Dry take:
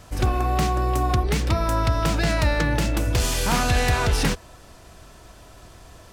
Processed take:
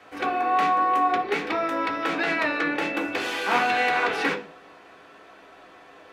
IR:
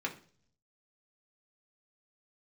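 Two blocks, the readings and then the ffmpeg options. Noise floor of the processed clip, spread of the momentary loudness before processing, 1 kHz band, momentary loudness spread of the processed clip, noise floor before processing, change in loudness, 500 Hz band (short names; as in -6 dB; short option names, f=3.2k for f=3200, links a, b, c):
-50 dBFS, 3 LU, +3.5 dB, 6 LU, -47 dBFS, -1.5 dB, -1.0 dB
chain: -filter_complex "[0:a]acrossover=split=310 3800:gain=0.0891 1 0.178[a][b][c];[a][b][c]amix=inputs=3:normalize=0,acrossover=split=180[d][e];[d]acompressor=threshold=-54dB:ratio=6[f];[f][e]amix=inputs=2:normalize=0[g];[1:a]atrim=start_sample=2205[h];[g][h]afir=irnorm=-1:irlink=0"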